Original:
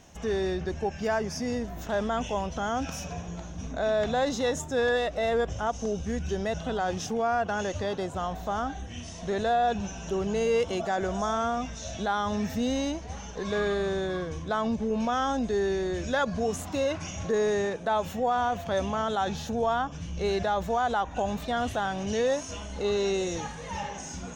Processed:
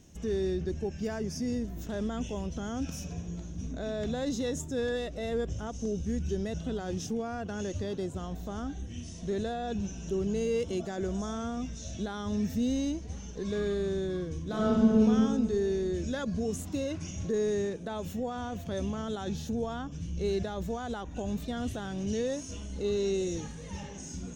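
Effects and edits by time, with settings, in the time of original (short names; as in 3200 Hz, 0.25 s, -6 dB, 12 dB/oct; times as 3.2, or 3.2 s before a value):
14.42–15.03 reverb throw, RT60 2.2 s, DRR -5.5 dB
whole clip: EQ curve 350 Hz 0 dB, 790 Hz -15 dB, 8700 Hz -2 dB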